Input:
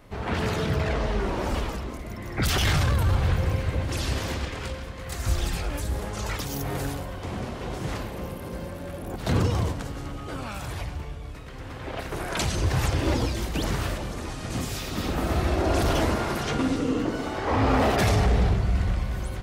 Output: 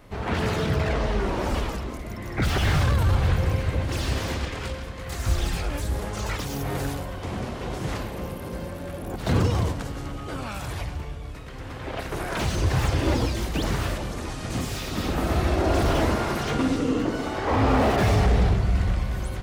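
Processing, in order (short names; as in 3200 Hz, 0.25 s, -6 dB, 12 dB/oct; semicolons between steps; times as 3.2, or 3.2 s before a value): slew limiter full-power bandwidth 89 Hz; gain +1.5 dB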